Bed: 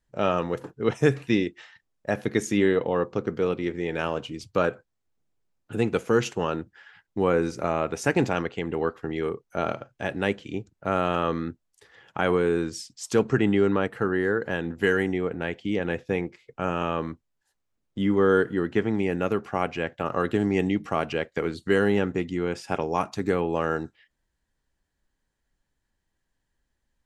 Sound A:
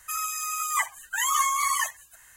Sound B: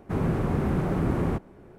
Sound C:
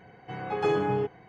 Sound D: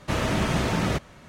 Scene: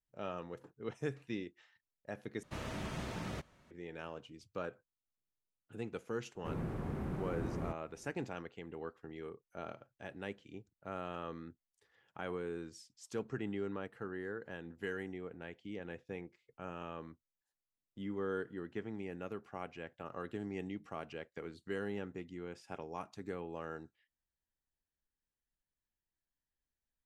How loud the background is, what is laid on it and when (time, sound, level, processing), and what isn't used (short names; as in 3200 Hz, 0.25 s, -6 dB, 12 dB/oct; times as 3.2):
bed -18 dB
2.43 replace with D -17 dB
6.35 add B -14 dB
not used: A, C